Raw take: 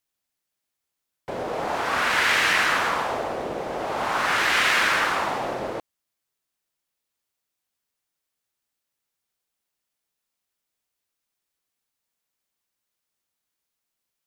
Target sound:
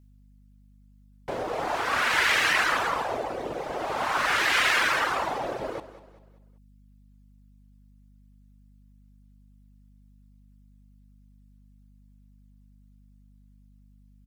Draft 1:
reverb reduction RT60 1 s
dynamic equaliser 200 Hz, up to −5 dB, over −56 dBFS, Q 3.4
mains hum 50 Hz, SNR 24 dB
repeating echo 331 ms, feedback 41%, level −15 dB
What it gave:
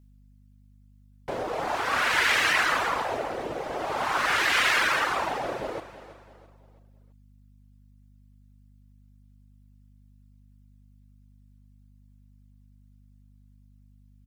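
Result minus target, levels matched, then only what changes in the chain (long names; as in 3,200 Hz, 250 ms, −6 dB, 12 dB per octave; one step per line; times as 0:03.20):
echo 136 ms late
change: repeating echo 195 ms, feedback 41%, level −15 dB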